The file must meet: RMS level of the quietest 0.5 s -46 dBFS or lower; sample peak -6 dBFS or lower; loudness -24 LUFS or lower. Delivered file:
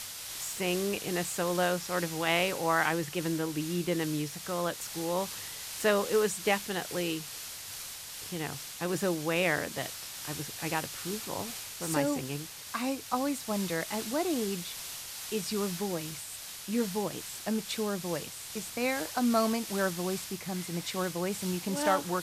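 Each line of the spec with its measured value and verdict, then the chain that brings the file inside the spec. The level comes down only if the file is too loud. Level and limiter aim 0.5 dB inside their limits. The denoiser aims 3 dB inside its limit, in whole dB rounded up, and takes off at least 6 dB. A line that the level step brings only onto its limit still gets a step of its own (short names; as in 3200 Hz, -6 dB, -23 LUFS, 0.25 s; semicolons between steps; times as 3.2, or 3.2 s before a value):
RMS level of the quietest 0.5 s -43 dBFS: fail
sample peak -12.5 dBFS: OK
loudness -32.0 LUFS: OK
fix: denoiser 6 dB, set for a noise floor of -43 dBFS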